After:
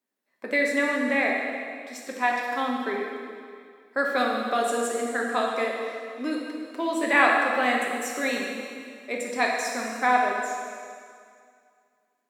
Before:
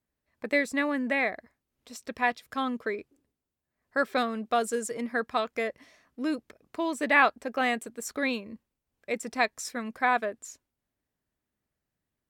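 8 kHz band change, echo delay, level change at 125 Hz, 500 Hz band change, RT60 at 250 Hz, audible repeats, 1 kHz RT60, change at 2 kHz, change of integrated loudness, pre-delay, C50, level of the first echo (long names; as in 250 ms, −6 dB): +3.5 dB, no echo audible, can't be measured, +4.0 dB, 2.2 s, no echo audible, 2.2 s, +4.0 dB, +3.5 dB, 4 ms, 1.0 dB, no echo audible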